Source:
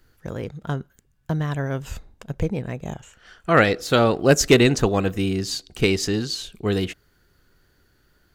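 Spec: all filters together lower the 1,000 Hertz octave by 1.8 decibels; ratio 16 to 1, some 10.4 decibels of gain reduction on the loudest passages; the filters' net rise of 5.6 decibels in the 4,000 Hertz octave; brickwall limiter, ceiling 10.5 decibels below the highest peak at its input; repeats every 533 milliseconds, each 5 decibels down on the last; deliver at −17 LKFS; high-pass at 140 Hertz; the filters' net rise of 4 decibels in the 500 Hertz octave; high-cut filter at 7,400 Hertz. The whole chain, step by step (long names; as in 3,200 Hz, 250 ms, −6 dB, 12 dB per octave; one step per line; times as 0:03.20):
high-pass filter 140 Hz
low-pass filter 7,400 Hz
parametric band 500 Hz +6 dB
parametric band 1,000 Hz −5.5 dB
parametric band 4,000 Hz +7.5 dB
downward compressor 16 to 1, threshold −17 dBFS
brickwall limiter −17.5 dBFS
repeating echo 533 ms, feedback 56%, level −5 dB
level +11 dB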